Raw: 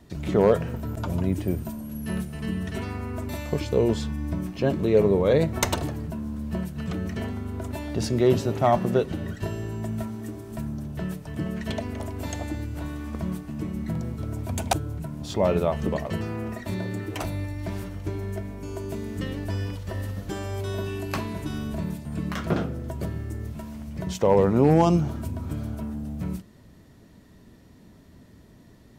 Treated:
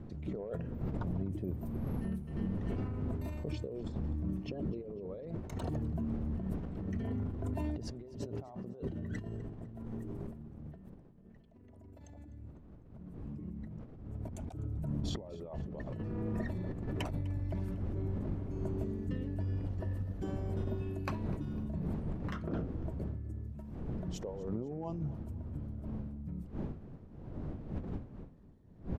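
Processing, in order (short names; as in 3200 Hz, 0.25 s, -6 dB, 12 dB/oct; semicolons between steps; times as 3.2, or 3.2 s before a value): formant sharpening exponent 1.5; wind noise 200 Hz -30 dBFS; Doppler pass-by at 11.57, 8 m/s, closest 2.6 m; negative-ratio compressor -55 dBFS, ratio -1; feedback echo 0.251 s, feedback 46%, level -20 dB; gain +12.5 dB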